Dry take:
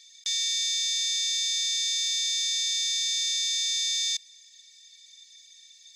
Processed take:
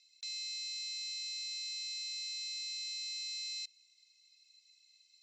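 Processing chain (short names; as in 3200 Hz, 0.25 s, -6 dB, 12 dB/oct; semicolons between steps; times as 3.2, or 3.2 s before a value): HPF 1500 Hz 12 dB/oct; air absorption 230 m; wide varispeed 1.14×; gain -6 dB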